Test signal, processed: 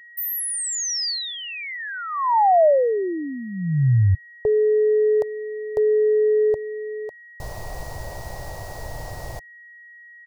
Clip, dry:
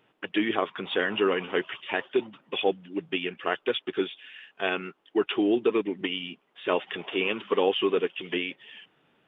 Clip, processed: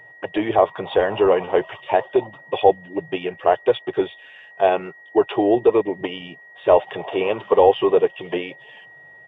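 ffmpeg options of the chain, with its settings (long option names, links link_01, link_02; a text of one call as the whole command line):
ffmpeg -i in.wav -af "apsyclip=15dB,aeval=exprs='val(0)+0.0447*sin(2*PI*1900*n/s)':channel_layout=same,firequalizer=gain_entry='entry(130,0);entry(210,-17);entry(360,-9);entry(610,2);entry(900,-1);entry(1300,-15);entry(3200,-18);entry(4600,-9);entry(7700,-11)':delay=0.05:min_phase=1" out.wav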